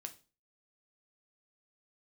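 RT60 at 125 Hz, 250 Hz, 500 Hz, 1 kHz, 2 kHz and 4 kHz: 0.45, 0.40, 0.35, 0.30, 0.30, 0.35 s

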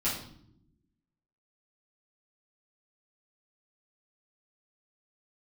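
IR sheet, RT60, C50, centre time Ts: not exponential, 4.5 dB, 37 ms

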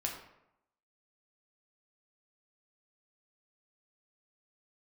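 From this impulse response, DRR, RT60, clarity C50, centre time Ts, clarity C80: -0.5 dB, 0.80 s, 5.5 dB, 32 ms, 8.0 dB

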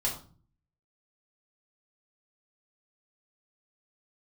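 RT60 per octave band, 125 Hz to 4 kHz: 0.75, 0.65, 0.40, 0.40, 0.30, 0.35 s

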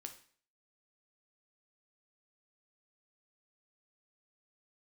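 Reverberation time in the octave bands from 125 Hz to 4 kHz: 0.50, 0.50, 0.50, 0.50, 0.50, 0.45 s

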